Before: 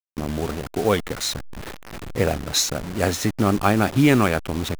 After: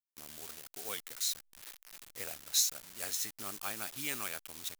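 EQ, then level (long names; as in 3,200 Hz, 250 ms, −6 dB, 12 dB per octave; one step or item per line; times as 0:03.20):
first-order pre-emphasis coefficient 0.97
−5.5 dB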